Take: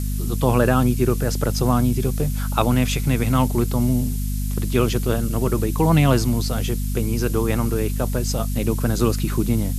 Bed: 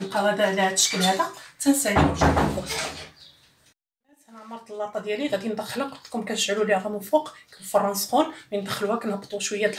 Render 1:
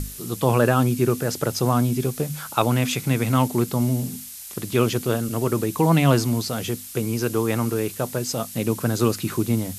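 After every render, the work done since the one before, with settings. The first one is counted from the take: hum notches 50/100/150/200/250 Hz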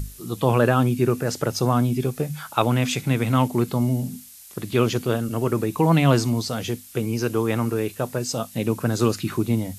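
noise print and reduce 7 dB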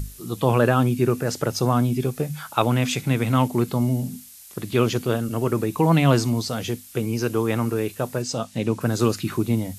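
8.22–8.81 s: low-pass 7.8 kHz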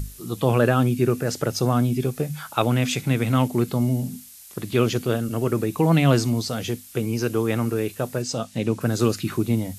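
dynamic bell 970 Hz, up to -5 dB, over -41 dBFS, Q 3.1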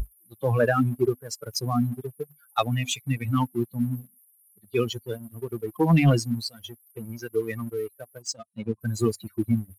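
expander on every frequency bin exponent 3; waveshaping leveller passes 1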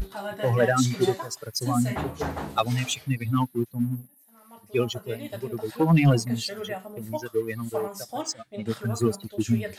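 add bed -12 dB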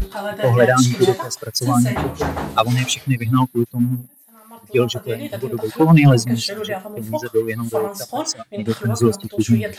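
trim +8 dB; peak limiter -2 dBFS, peak gain reduction 1.5 dB

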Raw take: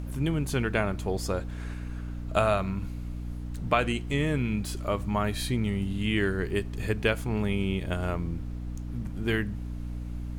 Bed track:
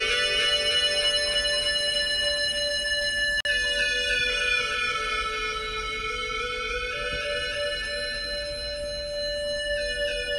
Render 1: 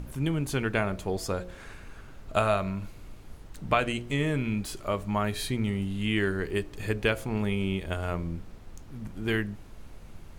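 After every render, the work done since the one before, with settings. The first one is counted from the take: de-hum 60 Hz, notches 11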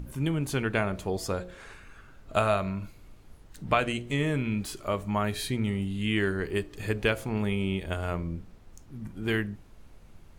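noise print and reduce 6 dB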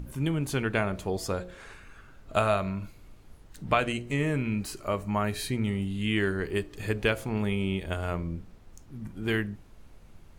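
3.92–5.63 s: band-stop 3.4 kHz, Q 6.5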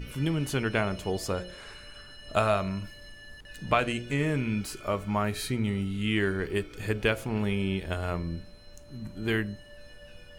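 add bed track -24.5 dB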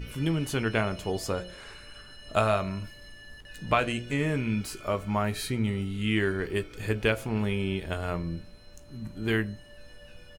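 doubling 18 ms -13 dB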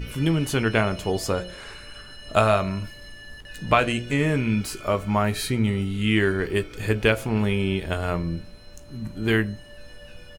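trim +5.5 dB

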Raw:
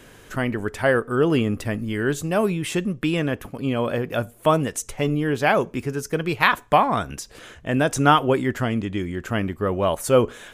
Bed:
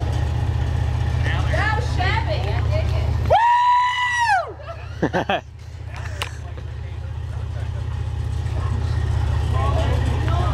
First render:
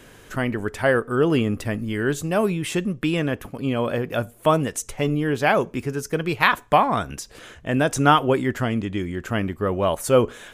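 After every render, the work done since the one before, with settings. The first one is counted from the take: no audible change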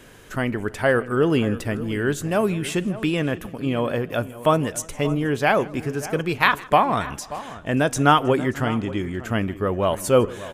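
echo from a far wall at 100 m, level -15 dB; modulated delay 159 ms, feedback 59%, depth 94 cents, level -22.5 dB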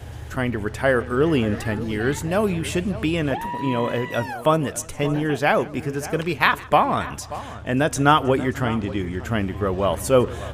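add bed -14.5 dB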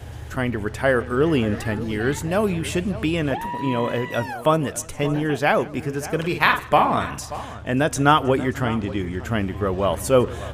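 6.18–7.45 s: doubling 49 ms -6.5 dB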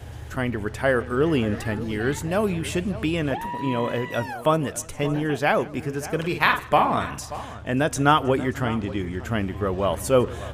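trim -2 dB

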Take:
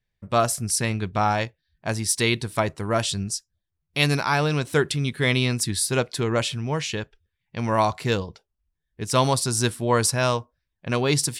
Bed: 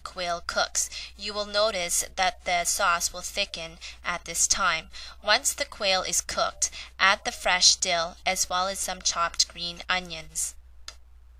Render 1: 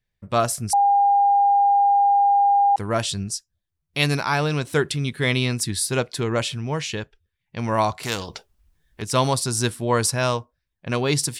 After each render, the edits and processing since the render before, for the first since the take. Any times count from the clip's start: 0.73–2.76 s: bleep 805 Hz -13.5 dBFS; 8.03–9.02 s: spectrum-flattening compressor 2:1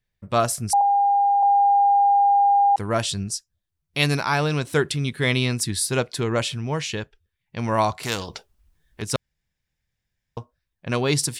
0.81–1.43 s: high-pass 670 Hz; 9.16–10.37 s: room tone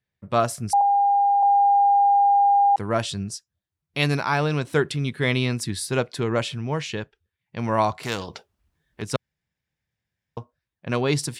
high-pass 88 Hz; treble shelf 4.3 kHz -8.5 dB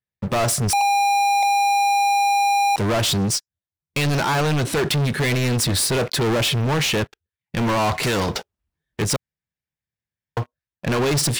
peak limiter -17 dBFS, peak gain reduction 9 dB; waveshaping leveller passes 5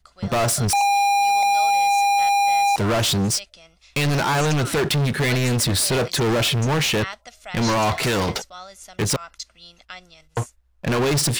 add bed -12.5 dB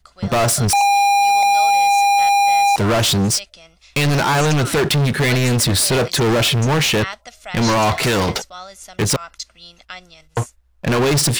trim +4 dB

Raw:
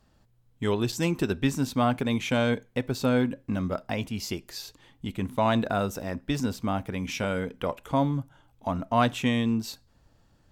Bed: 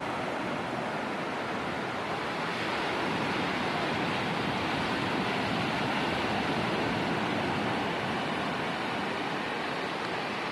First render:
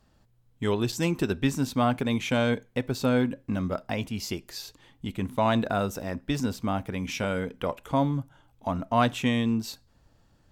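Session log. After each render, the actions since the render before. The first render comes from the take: no audible change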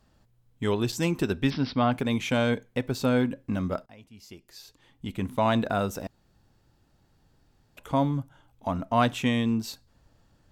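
1.50–1.92 s: careless resampling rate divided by 4×, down none, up filtered; 3.86–5.18 s: fade in quadratic, from -21 dB; 6.07–7.77 s: room tone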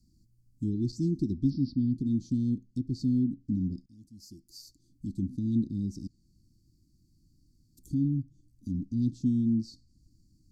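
Chebyshev band-stop 330–4500 Hz, order 5; low-pass that closes with the level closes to 3 kHz, closed at -28 dBFS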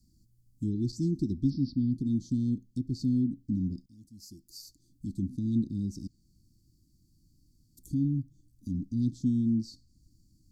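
elliptic band-stop 650–3200 Hz; treble shelf 6 kHz +6 dB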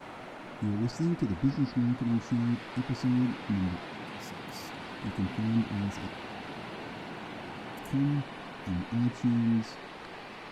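add bed -11.5 dB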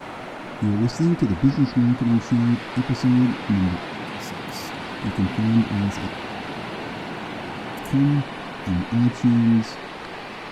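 trim +9.5 dB

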